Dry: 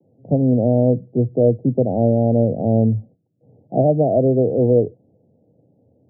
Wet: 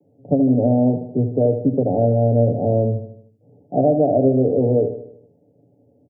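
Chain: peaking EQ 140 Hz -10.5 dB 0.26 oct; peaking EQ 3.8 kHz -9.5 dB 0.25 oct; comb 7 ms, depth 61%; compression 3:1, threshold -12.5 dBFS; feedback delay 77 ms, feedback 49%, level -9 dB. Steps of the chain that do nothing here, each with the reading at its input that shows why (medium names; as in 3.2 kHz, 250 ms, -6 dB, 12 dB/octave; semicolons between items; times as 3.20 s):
peaking EQ 3.8 kHz: input has nothing above 850 Hz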